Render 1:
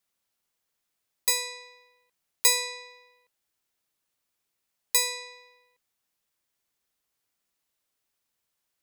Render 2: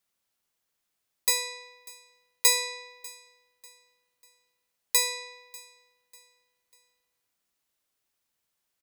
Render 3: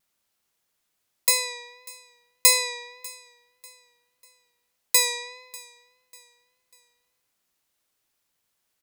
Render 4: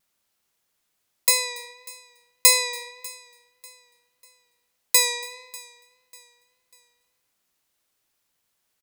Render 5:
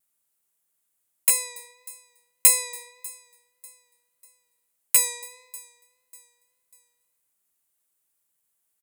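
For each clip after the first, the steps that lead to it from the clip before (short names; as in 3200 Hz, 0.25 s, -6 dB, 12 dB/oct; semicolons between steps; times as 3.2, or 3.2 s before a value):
feedback echo 0.594 s, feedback 37%, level -22 dB
vibrato 1.7 Hz 40 cents; gain +4.5 dB
echo 0.283 s -24 dB; gain +1.5 dB
rattling part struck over -49 dBFS, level -6 dBFS; resonant high shelf 6800 Hz +9 dB, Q 1.5; gain -8.5 dB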